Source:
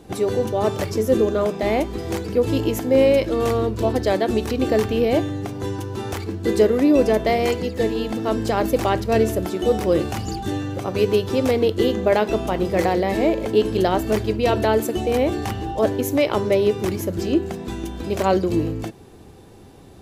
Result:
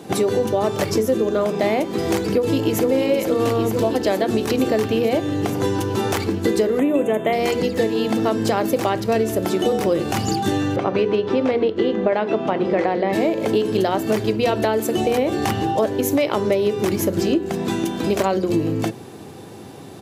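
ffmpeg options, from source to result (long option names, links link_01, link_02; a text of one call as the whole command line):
ffmpeg -i in.wav -filter_complex "[0:a]asplit=2[link_01][link_02];[link_02]afade=type=in:start_time=2.21:duration=0.01,afade=type=out:start_time=2.88:duration=0.01,aecho=0:1:460|920|1380|1840|2300|2760|3220|3680|4140|4600|5060|5520:0.794328|0.55603|0.389221|0.272455|0.190718|0.133503|0.0934519|0.0654163|0.0457914|0.032054|0.0224378|0.0157065[link_03];[link_01][link_03]amix=inputs=2:normalize=0,asettb=1/sr,asplit=3[link_04][link_05][link_06];[link_04]atrim=end=6.794[link_07];[link_05]atrim=start=6.79:end=7.33,asetpts=PTS-STARTPTS,afade=type=in:duration=0.004:curve=qsin,afade=type=out:start_time=0.536:duration=0.004:curve=qsin,asuperstop=centerf=4900:order=8:qfactor=1.6[link_08];[link_06]atrim=start=7.326[link_09];[link_07][link_08]acrossfade=duration=0.004:curve1=hsin:curve2=qsin[link_10];[link_10][link_09]acrossfade=duration=0.004:curve1=qsin:curve2=hsin,asettb=1/sr,asplit=3[link_11][link_12][link_13];[link_11]atrim=end=10.764[link_14];[link_12]atrim=start=10.76:end=13.13,asetpts=PTS-STARTPTS,afade=type=in:duration=0.004:curve=qsin,afade=type=out:start_time=2.366:duration=0.004:curve=qsin,highpass=140,lowpass=2800[link_15];[link_13]atrim=start=13.126[link_16];[link_14][link_15]acrossfade=duration=0.004:curve1=hsin:curve2=qsin[link_17];[link_17][link_16]acrossfade=duration=0.004:curve1=qsin:curve2=hsin,highpass=frequency=110:width=0.5412,highpass=frequency=110:width=1.3066,bandreject=frequency=60:width_type=h:width=6,bandreject=frequency=120:width_type=h:width=6,bandreject=frequency=180:width_type=h:width=6,bandreject=frequency=240:width_type=h:width=6,bandreject=frequency=300:width_type=h:width=6,bandreject=frequency=360:width_type=h:width=6,bandreject=frequency=420:width_type=h:width=6,bandreject=frequency=480:width_type=h:width=6,bandreject=frequency=540:width_type=h:width=6,acompressor=threshold=-25dB:ratio=6,volume=9dB" out.wav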